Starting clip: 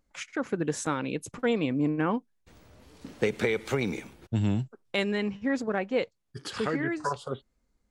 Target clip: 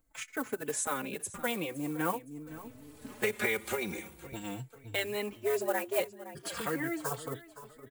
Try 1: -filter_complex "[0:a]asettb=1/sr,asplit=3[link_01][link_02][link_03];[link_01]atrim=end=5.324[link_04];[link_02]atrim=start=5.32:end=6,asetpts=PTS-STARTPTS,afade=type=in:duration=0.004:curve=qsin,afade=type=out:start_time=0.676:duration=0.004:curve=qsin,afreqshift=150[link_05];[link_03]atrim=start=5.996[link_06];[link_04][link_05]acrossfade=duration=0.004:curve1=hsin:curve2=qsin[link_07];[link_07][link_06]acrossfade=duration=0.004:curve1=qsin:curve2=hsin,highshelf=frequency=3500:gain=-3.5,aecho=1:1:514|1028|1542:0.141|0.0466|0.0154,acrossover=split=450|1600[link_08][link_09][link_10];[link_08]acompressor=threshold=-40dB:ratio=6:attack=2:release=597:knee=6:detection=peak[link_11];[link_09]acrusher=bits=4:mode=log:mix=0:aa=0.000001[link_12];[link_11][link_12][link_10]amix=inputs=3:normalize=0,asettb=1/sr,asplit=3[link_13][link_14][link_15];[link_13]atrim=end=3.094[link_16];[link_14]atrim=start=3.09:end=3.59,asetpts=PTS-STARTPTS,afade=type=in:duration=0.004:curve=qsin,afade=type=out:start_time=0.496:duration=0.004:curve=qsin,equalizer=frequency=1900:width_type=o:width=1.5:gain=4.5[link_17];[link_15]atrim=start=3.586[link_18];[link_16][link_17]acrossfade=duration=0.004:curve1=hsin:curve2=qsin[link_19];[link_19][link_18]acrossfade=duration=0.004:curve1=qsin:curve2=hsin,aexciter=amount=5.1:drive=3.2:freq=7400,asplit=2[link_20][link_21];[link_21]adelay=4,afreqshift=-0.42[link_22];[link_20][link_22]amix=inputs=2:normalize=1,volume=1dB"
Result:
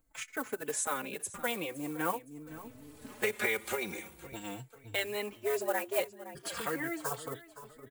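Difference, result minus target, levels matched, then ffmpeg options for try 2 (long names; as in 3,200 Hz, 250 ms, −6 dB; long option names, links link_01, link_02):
downward compressor: peak gain reduction +5.5 dB
-filter_complex "[0:a]asettb=1/sr,asplit=3[link_01][link_02][link_03];[link_01]atrim=end=5.324[link_04];[link_02]atrim=start=5.32:end=6,asetpts=PTS-STARTPTS,afade=type=in:duration=0.004:curve=qsin,afade=type=out:start_time=0.676:duration=0.004:curve=qsin,afreqshift=150[link_05];[link_03]atrim=start=5.996[link_06];[link_04][link_05]acrossfade=duration=0.004:curve1=hsin:curve2=qsin[link_07];[link_07][link_06]acrossfade=duration=0.004:curve1=qsin:curve2=hsin,highshelf=frequency=3500:gain=-3.5,aecho=1:1:514|1028|1542:0.141|0.0466|0.0154,acrossover=split=450|1600[link_08][link_09][link_10];[link_08]acompressor=threshold=-33.5dB:ratio=6:attack=2:release=597:knee=6:detection=peak[link_11];[link_09]acrusher=bits=4:mode=log:mix=0:aa=0.000001[link_12];[link_11][link_12][link_10]amix=inputs=3:normalize=0,asettb=1/sr,asplit=3[link_13][link_14][link_15];[link_13]atrim=end=3.094[link_16];[link_14]atrim=start=3.09:end=3.59,asetpts=PTS-STARTPTS,afade=type=in:duration=0.004:curve=qsin,afade=type=out:start_time=0.496:duration=0.004:curve=qsin,equalizer=frequency=1900:width_type=o:width=1.5:gain=4.5[link_17];[link_15]atrim=start=3.586[link_18];[link_16][link_17]acrossfade=duration=0.004:curve1=hsin:curve2=qsin[link_19];[link_19][link_18]acrossfade=duration=0.004:curve1=qsin:curve2=hsin,aexciter=amount=5.1:drive=3.2:freq=7400,asplit=2[link_20][link_21];[link_21]adelay=4,afreqshift=-0.42[link_22];[link_20][link_22]amix=inputs=2:normalize=1,volume=1dB"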